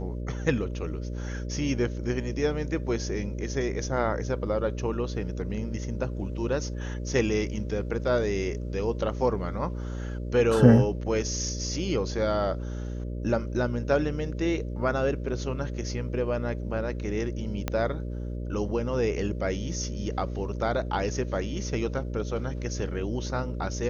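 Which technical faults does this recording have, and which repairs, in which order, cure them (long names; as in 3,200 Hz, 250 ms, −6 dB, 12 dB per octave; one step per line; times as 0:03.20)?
mains buzz 60 Hz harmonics 10 −33 dBFS
0:17.68: click −13 dBFS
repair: click removal
hum removal 60 Hz, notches 10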